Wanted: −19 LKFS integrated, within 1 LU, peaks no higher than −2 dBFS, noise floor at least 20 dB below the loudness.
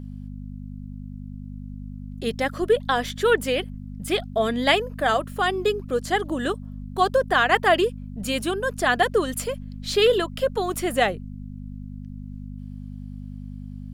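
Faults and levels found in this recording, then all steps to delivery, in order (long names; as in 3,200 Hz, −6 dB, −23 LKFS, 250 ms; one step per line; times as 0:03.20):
mains hum 50 Hz; hum harmonics up to 250 Hz; level of the hum −33 dBFS; integrated loudness −23.0 LKFS; sample peak −5.0 dBFS; target loudness −19.0 LKFS
→ hum removal 50 Hz, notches 5
level +4 dB
brickwall limiter −2 dBFS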